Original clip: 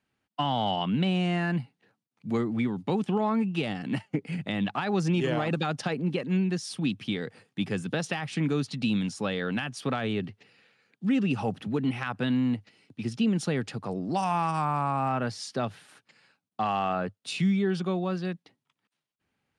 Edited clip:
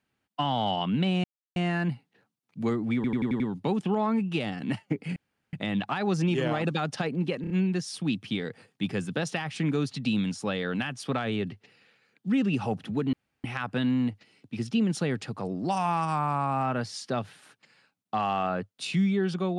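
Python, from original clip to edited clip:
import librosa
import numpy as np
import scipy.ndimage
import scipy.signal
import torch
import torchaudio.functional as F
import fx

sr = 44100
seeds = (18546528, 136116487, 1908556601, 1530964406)

y = fx.edit(x, sr, fx.insert_silence(at_s=1.24, length_s=0.32),
    fx.stutter(start_s=2.63, slice_s=0.09, count=6),
    fx.insert_room_tone(at_s=4.39, length_s=0.37),
    fx.stutter(start_s=6.27, slice_s=0.03, count=4),
    fx.insert_room_tone(at_s=11.9, length_s=0.31), tone=tone)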